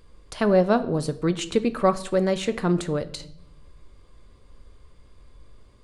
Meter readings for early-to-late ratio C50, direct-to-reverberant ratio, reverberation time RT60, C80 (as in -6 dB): 16.0 dB, 11.0 dB, 0.75 s, 19.0 dB